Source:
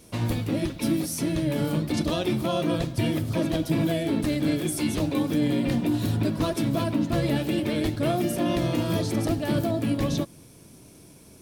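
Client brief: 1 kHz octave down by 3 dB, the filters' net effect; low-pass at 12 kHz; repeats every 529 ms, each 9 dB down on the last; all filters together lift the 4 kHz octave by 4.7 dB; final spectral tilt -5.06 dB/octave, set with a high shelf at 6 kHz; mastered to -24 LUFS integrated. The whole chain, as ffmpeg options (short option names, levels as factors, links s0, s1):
-af "lowpass=12000,equalizer=f=1000:t=o:g=-5,equalizer=f=4000:t=o:g=3.5,highshelf=f=6000:g=8,aecho=1:1:529|1058|1587|2116:0.355|0.124|0.0435|0.0152,volume=1.19"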